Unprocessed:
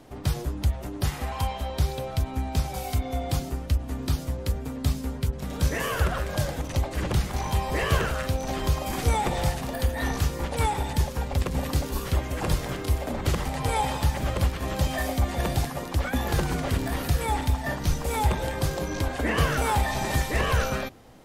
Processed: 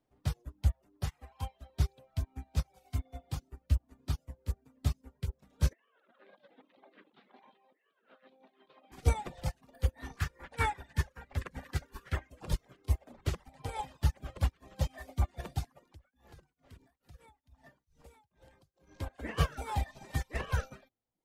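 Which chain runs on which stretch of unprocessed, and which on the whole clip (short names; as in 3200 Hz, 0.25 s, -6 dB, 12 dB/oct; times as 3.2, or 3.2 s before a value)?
5.73–8.92 Chebyshev band-pass 220–3800 Hz, order 4 + negative-ratio compressor -34 dBFS, ratio -0.5
10.17–12.3 bell 1700 Hz +12 dB 0.93 oct + notches 60/120/180/240/300/360/420/480/540/600 Hz
15.9–19 compressor 4:1, threshold -28 dBFS + beating tremolo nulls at 2.3 Hz
whole clip: reverb removal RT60 0.92 s; high shelf 10000 Hz -7.5 dB; upward expander 2.5:1, over -37 dBFS; gain -1.5 dB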